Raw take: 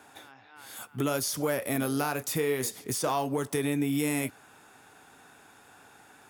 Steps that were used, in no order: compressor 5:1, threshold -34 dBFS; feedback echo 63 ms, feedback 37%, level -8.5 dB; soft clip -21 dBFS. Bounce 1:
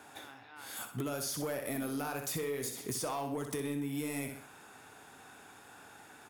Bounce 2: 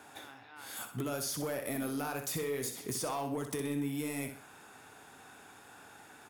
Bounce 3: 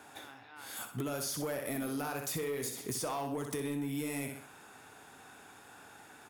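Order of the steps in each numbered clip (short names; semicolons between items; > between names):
soft clip > feedback echo > compressor; soft clip > compressor > feedback echo; feedback echo > soft clip > compressor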